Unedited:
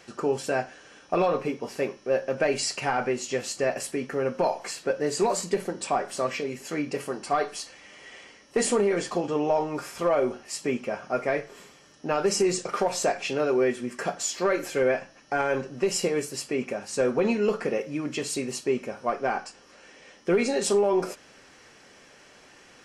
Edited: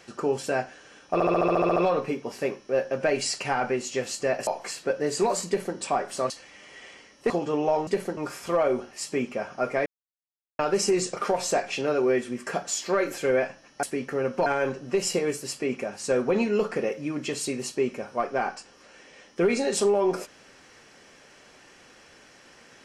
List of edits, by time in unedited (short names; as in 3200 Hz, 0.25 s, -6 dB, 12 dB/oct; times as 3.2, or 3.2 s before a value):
1.13 stutter 0.07 s, 10 plays
3.84–4.47 move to 15.35
5.47–5.77 copy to 9.69
6.3–7.6 cut
8.6–9.12 cut
11.38–12.11 mute